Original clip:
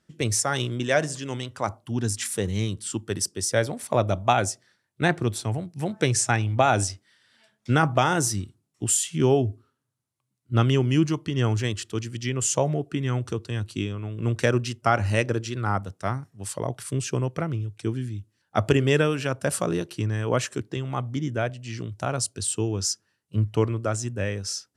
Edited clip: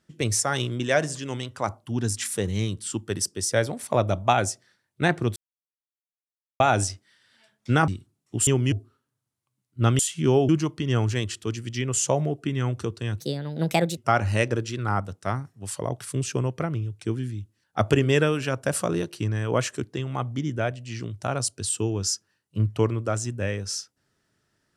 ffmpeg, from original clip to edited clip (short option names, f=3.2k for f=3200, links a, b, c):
-filter_complex "[0:a]asplit=10[a][b][c][d][e][f][g][h][i][j];[a]atrim=end=5.36,asetpts=PTS-STARTPTS,afade=t=out:st=5.356:d=0.004:c=hsin[k];[b]atrim=start=5.36:end=6.6,asetpts=PTS-STARTPTS,volume=0[l];[c]atrim=start=6.6:end=7.882,asetpts=PTS-STARTPTS,afade=t=in:d=0.004:c=hsin[m];[d]atrim=start=8.358:end=8.952[n];[e]atrim=start=10.718:end=10.972[o];[f]atrim=start=9.448:end=10.722[p];[g]atrim=start=8.948:end=9.452[q];[h]atrim=start=10.968:end=13.684[r];[i]atrim=start=13.68:end=14.75,asetpts=PTS-STARTPTS,asetrate=61299,aresample=44100,atrim=end_sample=33947,asetpts=PTS-STARTPTS[s];[j]atrim=start=14.746[t];[k][l][m]concat=n=3:v=0:a=1[u];[u][n]acrossfade=d=0.004:c1=hsin:c2=hsin[v];[v][o]acrossfade=d=0.004:c1=hsin:c2=hsin[w];[w][p]acrossfade=d=0.004:c1=hsin:c2=hsin[x];[x][q]acrossfade=d=0.004:c1=hsin:c2=hsin[y];[y][r]acrossfade=d=0.004:c1=hsin:c2=hsin[z];[z][s]acrossfade=d=0.004:c1=hsin:c2=hsin[aa];[aa][t]acrossfade=d=0.004:c1=hsin:c2=hsin"